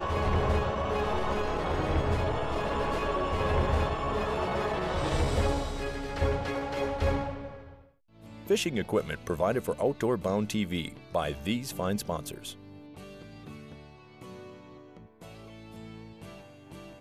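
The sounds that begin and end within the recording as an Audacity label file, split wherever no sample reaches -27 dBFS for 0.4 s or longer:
8.500000	12.490000	sound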